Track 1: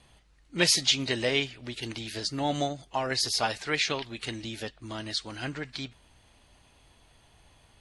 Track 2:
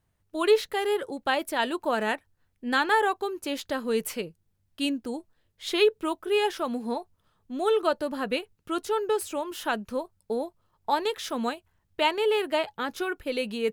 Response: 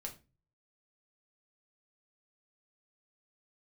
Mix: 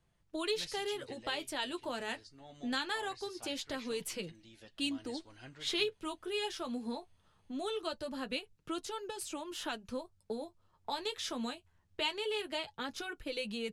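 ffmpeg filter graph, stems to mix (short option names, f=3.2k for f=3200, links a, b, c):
-filter_complex "[0:a]volume=-13.5dB,afade=t=in:st=4.21:d=0.66:silence=0.421697[a];[1:a]lowpass=8.3k,acrossover=split=160|3000[b][c][d];[c]acompressor=threshold=-40dB:ratio=3[e];[b][e][d]amix=inputs=3:normalize=0,volume=2.5dB[f];[a][f]amix=inputs=2:normalize=0,flanger=delay=5.8:depth=6.2:regen=-38:speed=0.22:shape=sinusoidal"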